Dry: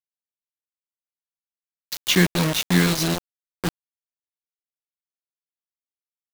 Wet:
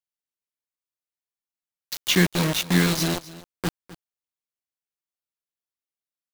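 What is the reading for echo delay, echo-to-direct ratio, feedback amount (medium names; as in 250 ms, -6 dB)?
257 ms, -18.0 dB, no regular repeats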